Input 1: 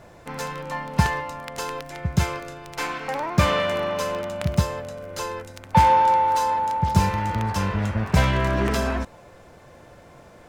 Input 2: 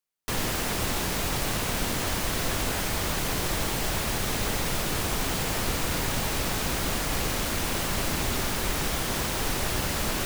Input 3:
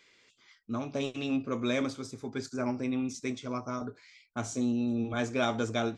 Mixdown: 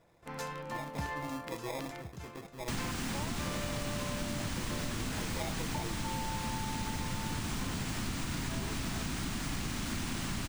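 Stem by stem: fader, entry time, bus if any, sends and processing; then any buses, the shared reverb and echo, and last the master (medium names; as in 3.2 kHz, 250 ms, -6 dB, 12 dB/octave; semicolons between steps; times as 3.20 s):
-12.5 dB, 0.00 s, no send, peak limiter -14 dBFS, peak gain reduction 10.5 dB; gain riding within 4 dB; trance gate ".xxxxxx.x...x" 67 bpm -12 dB
-5.0 dB, 2.40 s, no send, ten-band graphic EQ 125 Hz +4 dB, 250 Hz +8 dB, 500 Hz -11 dB, 8 kHz +4 dB, 16 kHz -12 dB
-10.0 dB, 0.00 s, no send, comb 6.1 ms, depth 98%; sample-and-hold 30×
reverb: none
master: compression, threshold -32 dBFS, peak gain reduction 7 dB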